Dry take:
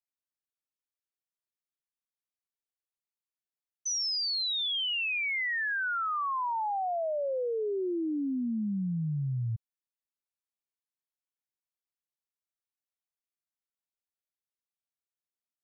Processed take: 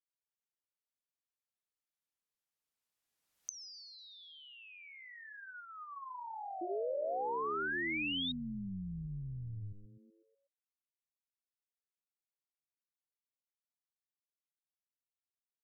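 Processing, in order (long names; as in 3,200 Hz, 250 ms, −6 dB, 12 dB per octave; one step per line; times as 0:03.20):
source passing by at 0:03.54, 33 m/s, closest 3.3 metres
on a send: echo with shifted repeats 123 ms, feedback 51%, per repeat −110 Hz, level −10 dB
on the sum: treble cut that deepens with the level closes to 560 Hz, closed at −57.5 dBFS
sound drawn into the spectrogram rise, 0:06.61–0:08.32, 340–3,800 Hz −59 dBFS
notch filter 370 Hz, Q 12
in parallel at −2.5 dB: compressor whose output falls as the input rises −59 dBFS
on the sum: level +17.5 dB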